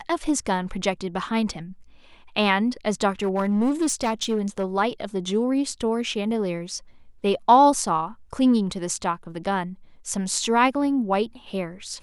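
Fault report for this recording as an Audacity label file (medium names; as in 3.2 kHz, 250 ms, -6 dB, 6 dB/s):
3.230000	4.640000	clipped -18 dBFS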